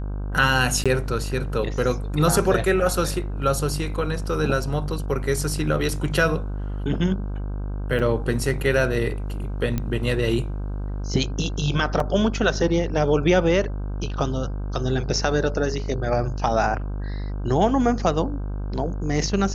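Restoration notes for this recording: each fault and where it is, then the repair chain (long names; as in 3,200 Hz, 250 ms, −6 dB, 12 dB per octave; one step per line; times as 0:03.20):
mains buzz 50 Hz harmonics 32 −28 dBFS
0:00.84–0:00.86: drop-out 16 ms
0:07.99–0:08.00: drop-out 6.4 ms
0:09.78: click −12 dBFS
0:12.00: drop-out 2.5 ms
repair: click removal
hum removal 50 Hz, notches 32
repair the gap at 0:00.84, 16 ms
repair the gap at 0:07.99, 6.4 ms
repair the gap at 0:12.00, 2.5 ms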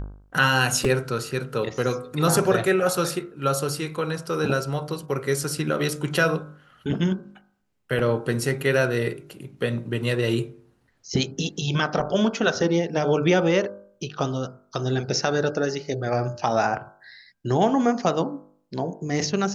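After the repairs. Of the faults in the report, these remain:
none of them is left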